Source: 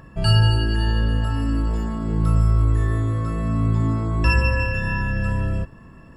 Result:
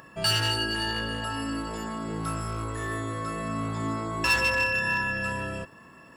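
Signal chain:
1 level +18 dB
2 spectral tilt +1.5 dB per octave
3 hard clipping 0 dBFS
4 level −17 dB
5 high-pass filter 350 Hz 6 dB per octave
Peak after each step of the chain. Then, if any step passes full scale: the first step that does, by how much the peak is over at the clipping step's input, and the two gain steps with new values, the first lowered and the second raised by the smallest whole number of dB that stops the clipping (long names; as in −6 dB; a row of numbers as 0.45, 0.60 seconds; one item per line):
+13.0, +9.5, 0.0, −17.0, −13.0 dBFS
step 1, 9.5 dB
step 1 +8 dB, step 4 −7 dB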